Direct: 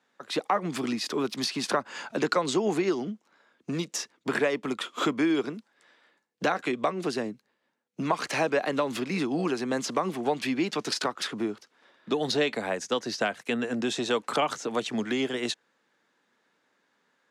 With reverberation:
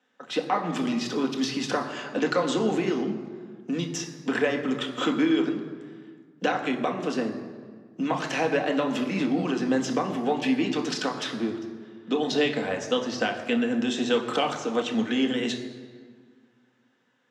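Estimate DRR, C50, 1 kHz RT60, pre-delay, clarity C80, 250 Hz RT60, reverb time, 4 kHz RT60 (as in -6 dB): 2.5 dB, 9.0 dB, 1.7 s, 3 ms, 10.0 dB, 2.2 s, 1.7 s, 1.2 s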